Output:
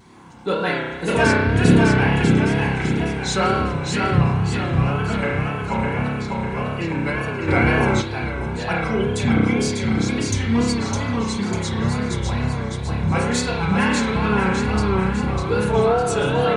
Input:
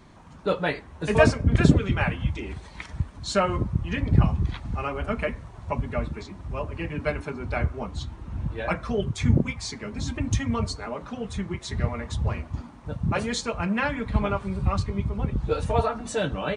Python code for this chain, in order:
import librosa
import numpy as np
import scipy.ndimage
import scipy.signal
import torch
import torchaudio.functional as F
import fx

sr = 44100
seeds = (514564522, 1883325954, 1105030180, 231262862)

p1 = fx.highpass(x, sr, hz=120.0, slope=6)
p2 = fx.high_shelf(p1, sr, hz=7200.0, db=10.5)
p3 = fx.echo_feedback(p2, sr, ms=601, feedback_pct=49, wet_db=-3.5)
p4 = fx.rev_spring(p3, sr, rt60_s=1.3, pass_ms=(30,), chirp_ms=25, drr_db=-2.5)
p5 = 10.0 ** (-16.5 / 20.0) * np.tanh(p4 / 10.0 ** (-16.5 / 20.0))
p6 = p4 + F.gain(torch.from_numpy(p5), -7.5).numpy()
p7 = fx.wow_flutter(p6, sr, seeds[0], rate_hz=2.1, depth_cents=97.0)
p8 = fx.notch_comb(p7, sr, f0_hz=610.0)
y = fx.env_flatten(p8, sr, amount_pct=50, at=(7.47, 8.0), fade=0.02)